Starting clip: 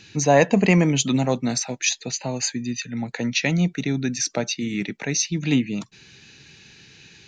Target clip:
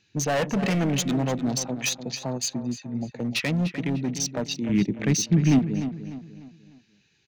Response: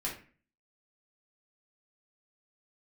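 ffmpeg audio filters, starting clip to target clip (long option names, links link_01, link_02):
-filter_complex "[0:a]afwtdn=0.0251,volume=19dB,asoftclip=hard,volume=-19dB,asettb=1/sr,asplit=3[link_01][link_02][link_03];[link_01]atrim=end=4.694[link_04];[link_02]atrim=start=4.69:end=5.59,asetpts=PTS-STARTPTS,afade=type=in:duration=0.004:curve=qsin,afade=type=out:start_time=0.896:duration=0.004:curve=qsin,lowshelf=frequency=320:gain=11.5[link_05];[link_03]atrim=start=5.586[link_06];[link_04][link_05]acrossfade=duration=0.004:curve1=hsin:curve2=qsin[link_07];[link_07][link_06]acrossfade=duration=0.004:curve1=qsin:curve2=hsin,asplit=2[link_08][link_09];[link_09]adelay=299,lowpass=frequency=4400:poles=1,volume=-10.5dB,asplit=2[link_10][link_11];[link_11]adelay=299,lowpass=frequency=4400:poles=1,volume=0.4,asplit=2[link_12][link_13];[link_13]adelay=299,lowpass=frequency=4400:poles=1,volume=0.4,asplit=2[link_14][link_15];[link_15]adelay=299,lowpass=frequency=4400:poles=1,volume=0.4[link_16];[link_08][link_10][link_12][link_14][link_16]amix=inputs=5:normalize=0,volume=-2dB"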